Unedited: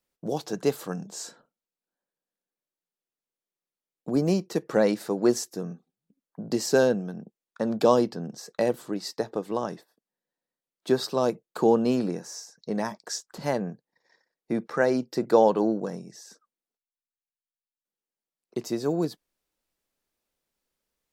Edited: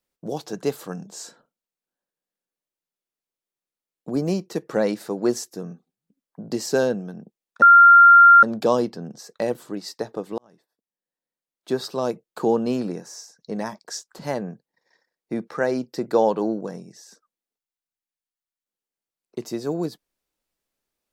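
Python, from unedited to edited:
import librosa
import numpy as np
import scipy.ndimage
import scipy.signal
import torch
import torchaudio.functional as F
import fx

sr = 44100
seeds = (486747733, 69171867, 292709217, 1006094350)

y = fx.edit(x, sr, fx.insert_tone(at_s=7.62, length_s=0.81, hz=1390.0, db=-6.5),
    fx.fade_in_span(start_s=9.57, length_s=2.06, curve='qsin'), tone=tone)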